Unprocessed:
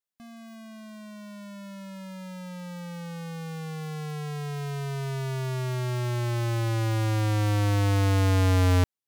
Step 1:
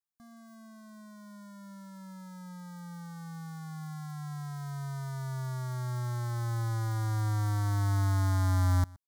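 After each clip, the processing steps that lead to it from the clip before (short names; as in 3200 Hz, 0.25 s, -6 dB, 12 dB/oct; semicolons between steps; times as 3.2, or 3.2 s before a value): fixed phaser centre 1100 Hz, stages 4; echo 0.121 s -23.5 dB; gain -4 dB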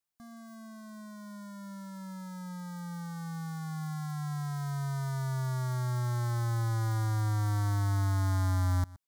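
compressor 2.5:1, threshold -34 dBFS, peak gain reduction 6.5 dB; gain +4 dB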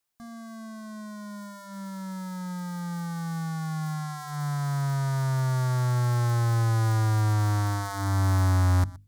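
notches 50/100/150/200/250/300 Hz; Doppler distortion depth 0.22 ms; gain +7 dB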